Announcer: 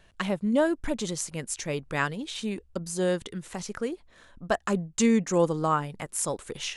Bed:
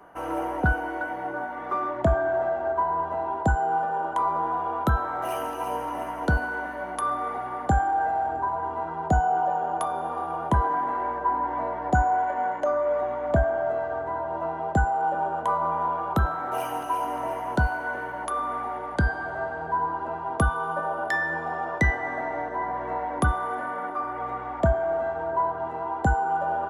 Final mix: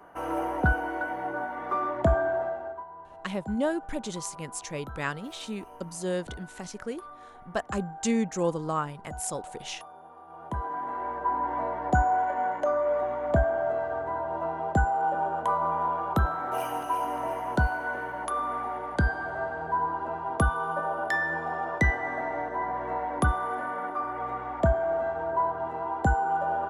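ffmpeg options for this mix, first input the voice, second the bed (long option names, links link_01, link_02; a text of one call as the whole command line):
ffmpeg -i stem1.wav -i stem2.wav -filter_complex "[0:a]adelay=3050,volume=-4dB[link_01];[1:a]volume=16.5dB,afade=type=out:start_time=2.19:duration=0.66:silence=0.125893,afade=type=in:start_time=10.25:duration=1.26:silence=0.133352[link_02];[link_01][link_02]amix=inputs=2:normalize=0" out.wav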